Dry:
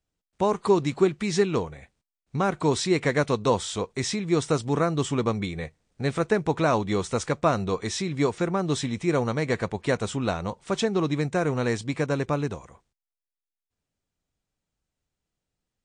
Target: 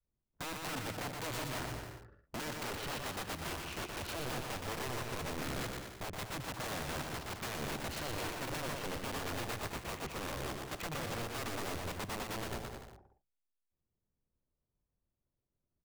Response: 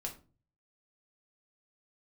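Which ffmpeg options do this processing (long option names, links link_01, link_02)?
-filter_complex "[0:a]adynamicequalizer=threshold=0.0251:dfrequency=340:dqfactor=1.1:tfrequency=340:tqfactor=1.1:attack=5:release=100:ratio=0.375:range=2:mode=cutabove:tftype=bell,acompressor=threshold=-30dB:ratio=20,asetrate=34006,aresample=44100,atempo=1.29684,adynamicsmooth=sensitivity=7:basefreq=980,aeval=exprs='(mod(42.2*val(0)+1,2)-1)/42.2':channel_layout=same,asplit=2[link_01][link_02];[link_02]aecho=0:1:120|216|292.8|354.2|403.4:0.631|0.398|0.251|0.158|0.1[link_03];[link_01][link_03]amix=inputs=2:normalize=0,volume=-3dB"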